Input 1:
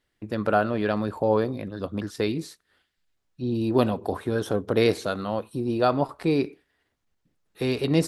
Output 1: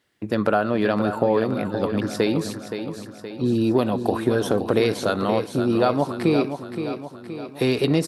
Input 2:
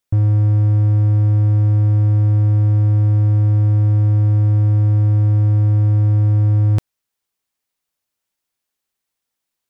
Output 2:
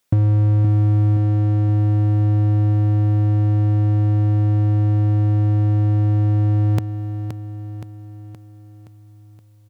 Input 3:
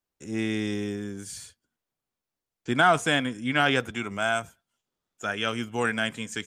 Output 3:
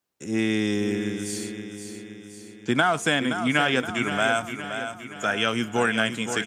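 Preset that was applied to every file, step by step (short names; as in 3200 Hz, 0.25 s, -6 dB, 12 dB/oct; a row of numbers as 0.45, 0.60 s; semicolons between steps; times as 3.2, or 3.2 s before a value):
HPF 110 Hz; compressor 6:1, threshold -23 dBFS; on a send: feedback echo 0.521 s, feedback 54%, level -9 dB; on the sum: normalise peaks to -6 dBFS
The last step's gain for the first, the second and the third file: +7.0, +9.0, +5.5 dB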